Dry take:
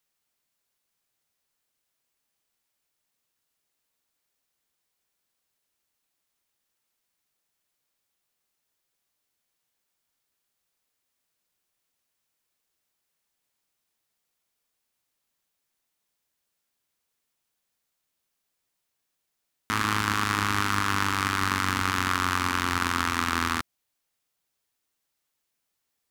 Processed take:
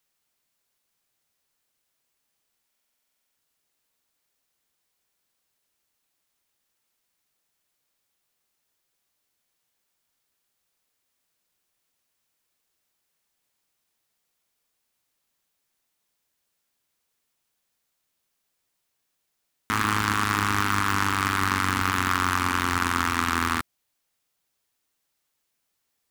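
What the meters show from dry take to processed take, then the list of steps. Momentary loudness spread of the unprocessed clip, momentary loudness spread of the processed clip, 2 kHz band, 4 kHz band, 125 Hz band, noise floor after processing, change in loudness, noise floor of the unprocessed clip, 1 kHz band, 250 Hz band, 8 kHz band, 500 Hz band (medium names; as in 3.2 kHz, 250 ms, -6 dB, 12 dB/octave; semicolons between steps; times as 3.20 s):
3 LU, 3 LU, +1.5 dB, -0.5 dB, +2.0 dB, -77 dBFS, +1.5 dB, -80 dBFS, +2.0 dB, +2.0 dB, +1.5 dB, +1.5 dB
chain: in parallel at -8.5 dB: integer overflow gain 12 dB; on the sum: buffer glitch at 2.67 s, samples 2048, times 14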